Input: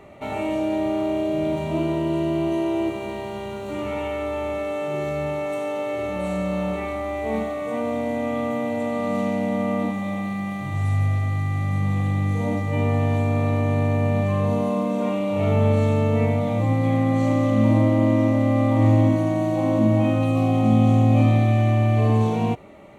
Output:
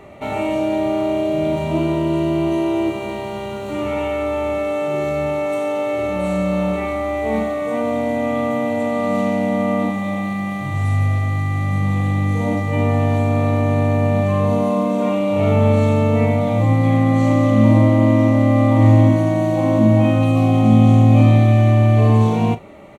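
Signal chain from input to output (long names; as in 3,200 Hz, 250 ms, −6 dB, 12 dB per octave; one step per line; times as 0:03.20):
double-tracking delay 37 ms −13.5 dB
level +4.5 dB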